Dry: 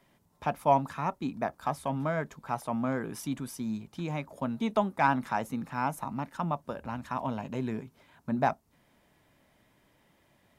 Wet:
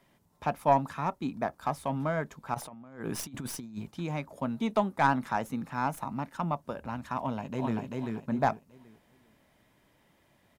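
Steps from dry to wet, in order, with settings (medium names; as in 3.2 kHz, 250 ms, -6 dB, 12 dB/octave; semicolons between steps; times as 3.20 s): tracing distortion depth 0.042 ms; 2.54–3.91 s: compressor with a negative ratio -38 dBFS, ratio -0.5; 7.19–7.81 s: echo throw 390 ms, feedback 30%, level -2 dB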